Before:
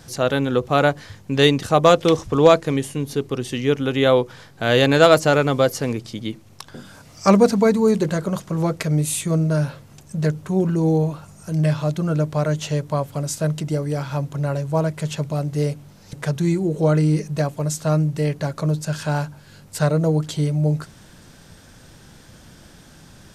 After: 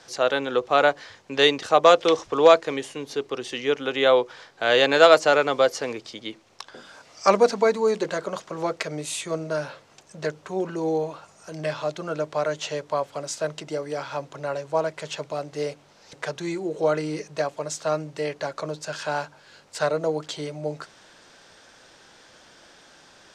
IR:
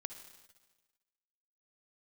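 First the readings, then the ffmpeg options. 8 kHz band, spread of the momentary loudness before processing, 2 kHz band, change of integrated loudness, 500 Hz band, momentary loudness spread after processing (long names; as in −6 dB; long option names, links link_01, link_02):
−5.0 dB, 11 LU, 0.0 dB, −3.5 dB, −2.0 dB, 16 LU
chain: -filter_complex "[0:a]acrossover=split=360 7500:gain=0.0891 1 0.0708[link_01][link_02][link_03];[link_01][link_02][link_03]amix=inputs=3:normalize=0"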